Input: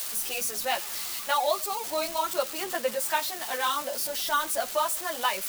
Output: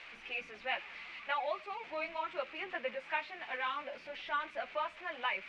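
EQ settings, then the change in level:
transistor ladder low-pass 2,600 Hz, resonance 65%
0.0 dB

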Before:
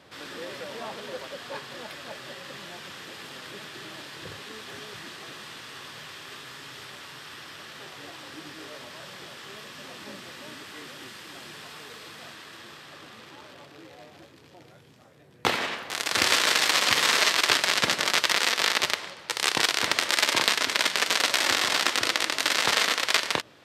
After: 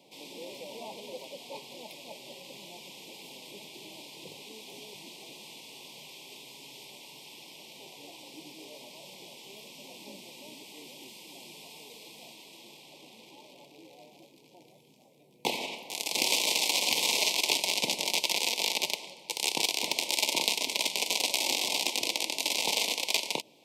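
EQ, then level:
high-pass filter 160 Hz 24 dB per octave
elliptic band-stop filter 940–2,300 Hz, stop band 50 dB
high-shelf EQ 11,000 Hz +9 dB
−4.0 dB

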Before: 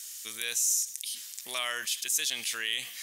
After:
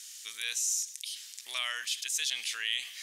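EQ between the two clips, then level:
resonant band-pass 3,200 Hz, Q 0.59
0.0 dB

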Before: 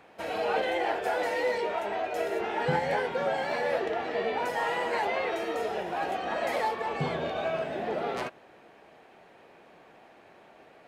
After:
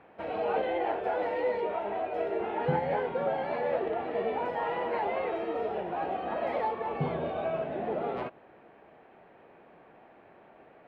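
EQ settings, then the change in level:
dynamic equaliser 1,700 Hz, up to −5 dB, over −45 dBFS, Q 2
high-frequency loss of the air 490 metres
+1.0 dB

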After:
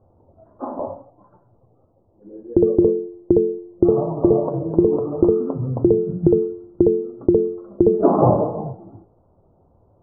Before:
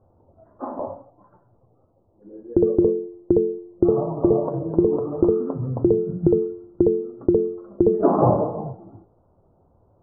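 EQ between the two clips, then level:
low-pass filter 1,300 Hz 12 dB per octave
+2.5 dB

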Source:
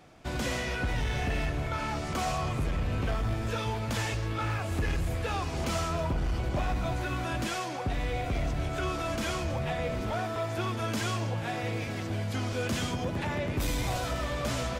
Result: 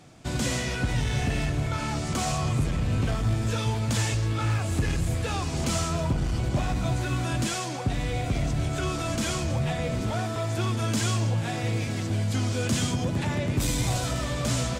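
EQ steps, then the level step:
octave-band graphic EQ 125/250/4,000/8,000 Hz +8/+4/+3/+10 dB
0.0 dB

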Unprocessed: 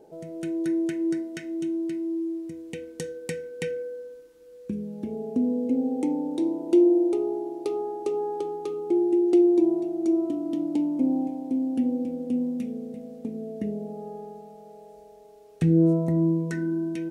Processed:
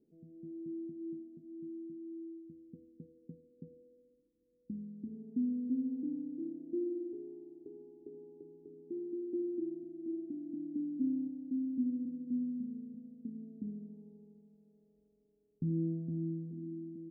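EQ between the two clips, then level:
transistor ladder low-pass 300 Hz, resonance 50%
−7.0 dB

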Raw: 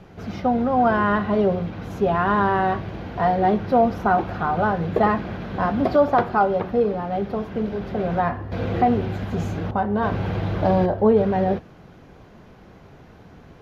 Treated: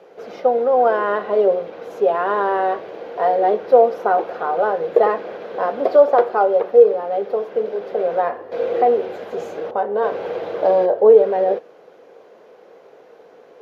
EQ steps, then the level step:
high-pass with resonance 480 Hz, resonance Q 4.9
−2.5 dB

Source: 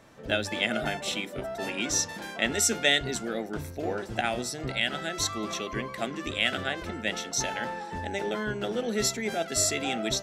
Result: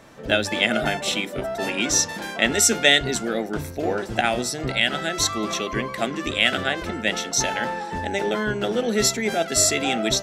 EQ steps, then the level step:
parametric band 91 Hz −3 dB
+7.0 dB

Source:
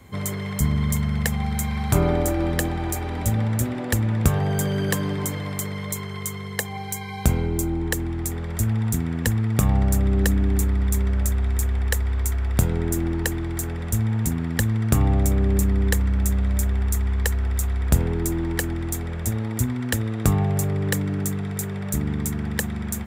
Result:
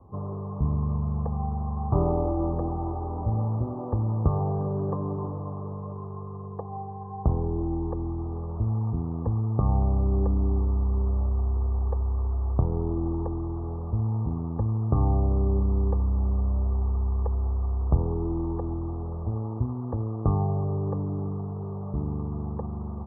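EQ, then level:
Chebyshev low-pass with heavy ripple 1,200 Hz, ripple 3 dB
parametric band 230 Hz −7 dB 0.93 octaves
0.0 dB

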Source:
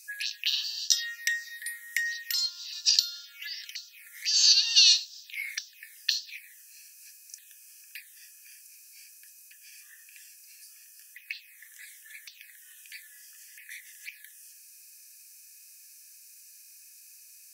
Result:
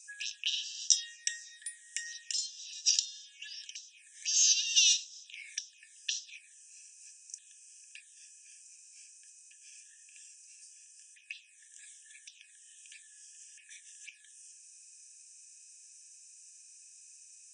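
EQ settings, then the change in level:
linear-phase brick-wall band-pass 1,600–9,600 Hz
high-shelf EQ 4,000 Hz +11.5 dB
phaser with its sweep stopped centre 3,000 Hz, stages 8
−6.5 dB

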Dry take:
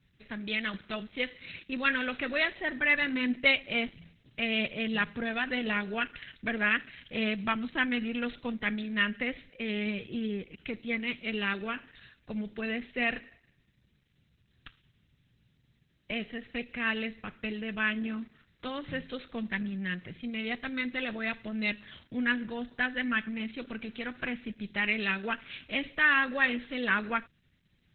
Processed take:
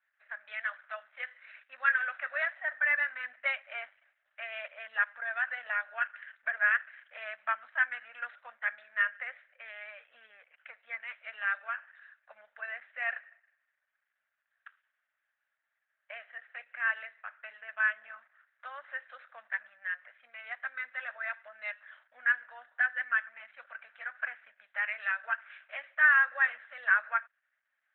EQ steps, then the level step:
elliptic high-pass filter 600 Hz, stop band 40 dB
low-pass with resonance 1,600 Hz, resonance Q 3.8
notch filter 1,000 Hz, Q 22
−7.0 dB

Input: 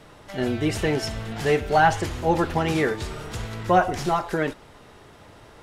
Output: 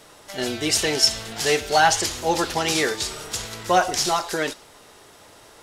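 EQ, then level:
dynamic equaliser 4,800 Hz, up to +8 dB, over −45 dBFS, Q 0.73
bass and treble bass −9 dB, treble +11 dB
0.0 dB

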